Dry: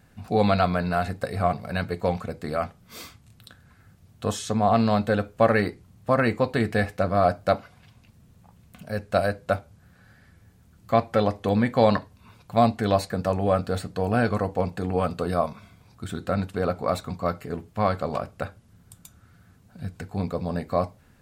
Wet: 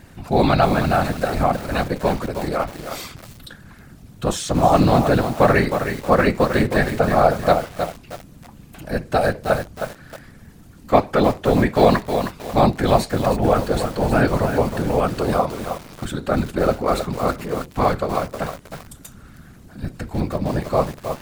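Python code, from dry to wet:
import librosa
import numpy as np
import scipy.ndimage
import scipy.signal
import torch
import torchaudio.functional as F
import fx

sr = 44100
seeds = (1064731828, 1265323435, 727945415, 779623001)

y = fx.law_mismatch(x, sr, coded='mu')
y = fx.whisperise(y, sr, seeds[0])
y = fx.echo_crushed(y, sr, ms=315, feedback_pct=35, bits=6, wet_db=-7)
y = F.gain(torch.from_numpy(y), 4.5).numpy()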